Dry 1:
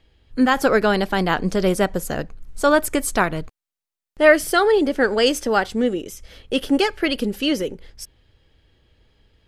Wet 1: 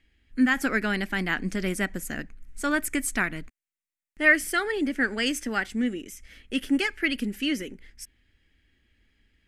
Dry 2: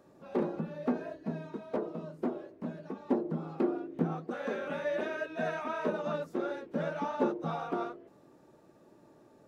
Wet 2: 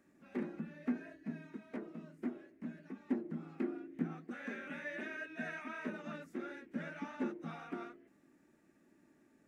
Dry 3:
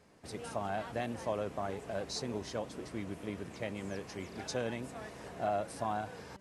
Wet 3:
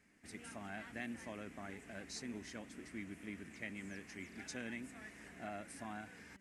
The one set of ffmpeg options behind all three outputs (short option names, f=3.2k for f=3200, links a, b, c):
-af "equalizer=f=125:t=o:w=1:g=-8,equalizer=f=250:t=o:w=1:g=7,equalizer=f=500:t=o:w=1:g=-10,equalizer=f=1k:t=o:w=1:g=-8,equalizer=f=2k:t=o:w=1:g=11,equalizer=f=4k:t=o:w=1:g=-6,equalizer=f=8k:t=o:w=1:g=4,volume=-7dB"